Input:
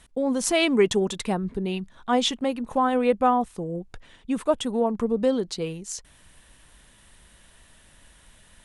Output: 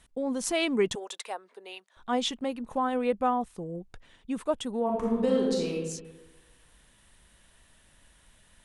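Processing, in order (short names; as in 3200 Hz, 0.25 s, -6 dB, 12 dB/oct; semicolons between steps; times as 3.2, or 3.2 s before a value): 0.95–1.97 HPF 520 Hz 24 dB/oct; 4.83–5.74 reverb throw, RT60 1.2 s, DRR -3 dB; gain -6 dB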